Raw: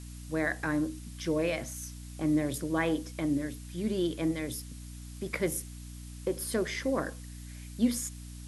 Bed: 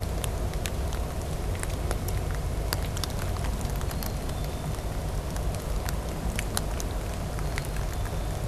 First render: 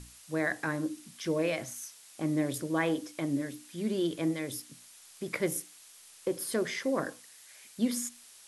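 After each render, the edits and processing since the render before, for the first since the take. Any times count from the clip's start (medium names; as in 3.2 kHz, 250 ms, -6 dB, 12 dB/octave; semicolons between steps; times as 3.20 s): hum notches 60/120/180/240/300 Hz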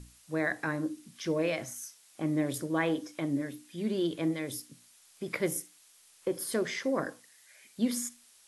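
noise print and reduce 6 dB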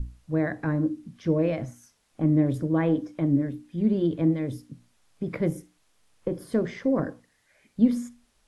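tilt EQ -4.5 dB/octave; band-stop 370 Hz, Q 12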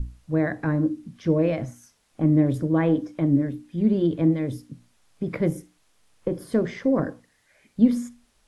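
trim +2.5 dB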